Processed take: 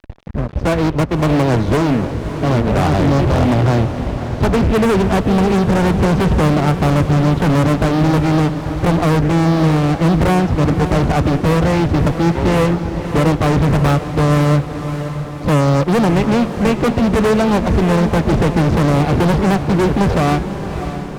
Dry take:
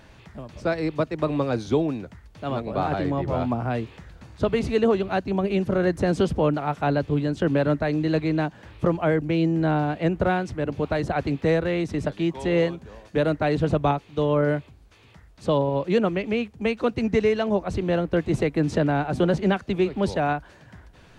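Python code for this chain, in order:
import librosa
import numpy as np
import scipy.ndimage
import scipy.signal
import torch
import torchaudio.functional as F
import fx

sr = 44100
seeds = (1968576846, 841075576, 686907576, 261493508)

p1 = scipy.signal.sosfilt(scipy.signal.butter(2, 5000.0, 'lowpass', fs=sr, output='sos'), x)
p2 = fx.tilt_eq(p1, sr, slope=-3.5)
p3 = fx.fuzz(p2, sr, gain_db=25.0, gate_db=-34.0)
p4 = p3 + fx.echo_diffused(p3, sr, ms=588, feedback_pct=59, wet_db=-10, dry=0)
y = p4 * librosa.db_to_amplitude(1.5)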